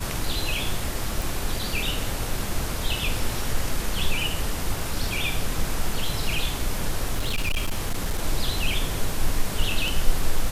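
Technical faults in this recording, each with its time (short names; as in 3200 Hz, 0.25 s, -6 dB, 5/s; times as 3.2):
1.22 pop
7.13–8.19 clipped -20 dBFS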